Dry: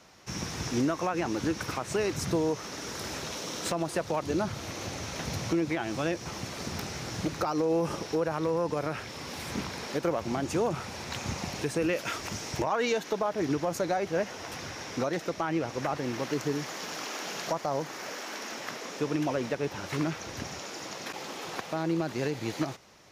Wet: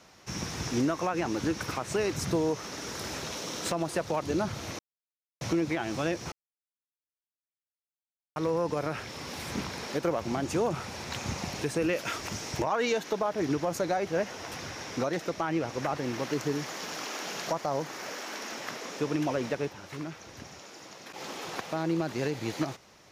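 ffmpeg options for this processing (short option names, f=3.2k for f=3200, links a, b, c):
-filter_complex "[0:a]asplit=7[a][b][c][d][e][f][g];[a]atrim=end=4.79,asetpts=PTS-STARTPTS,afade=t=out:st=4.786:d=0.004:c=hsin[h];[b]atrim=start=4.79:end=5.41,asetpts=PTS-STARTPTS,volume=0[i];[c]atrim=start=5.41:end=6.32,asetpts=PTS-STARTPTS,afade=t=in:d=0.004:c=hsin,afade=t=out:st=0.906:d=0.004:c=hsin[j];[d]atrim=start=6.32:end=8.36,asetpts=PTS-STARTPTS,volume=0[k];[e]atrim=start=8.36:end=19.74,asetpts=PTS-STARTPTS,afade=t=in:d=0.004:c=hsin,afade=t=out:st=11.26:d=0.12:silence=0.398107[l];[f]atrim=start=19.74:end=21.11,asetpts=PTS-STARTPTS,volume=-8dB[m];[g]atrim=start=21.11,asetpts=PTS-STARTPTS,afade=t=in:d=0.12:silence=0.398107[n];[h][i][j][k][l][m][n]concat=n=7:v=0:a=1"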